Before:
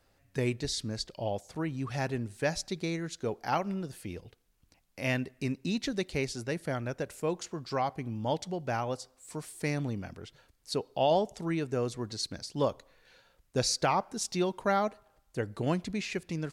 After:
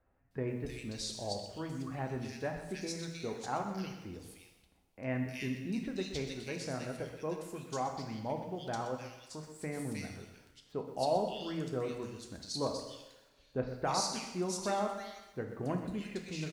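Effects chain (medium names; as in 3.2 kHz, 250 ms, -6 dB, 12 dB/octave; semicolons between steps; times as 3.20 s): bands offset in time lows, highs 310 ms, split 2.1 kHz; two-slope reverb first 0.92 s, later 2.7 s, from -23 dB, DRR 3.5 dB; bit-crushed delay 125 ms, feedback 35%, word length 9-bit, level -12 dB; trim -6.5 dB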